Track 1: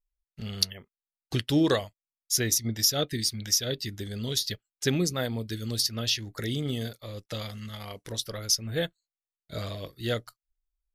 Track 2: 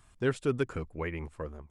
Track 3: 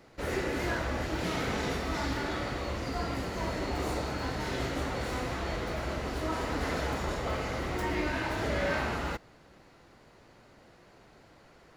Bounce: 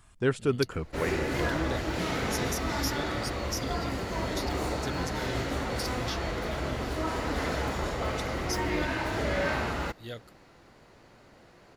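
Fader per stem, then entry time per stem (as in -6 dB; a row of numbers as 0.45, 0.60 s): -11.5, +2.5, +1.5 dB; 0.00, 0.00, 0.75 s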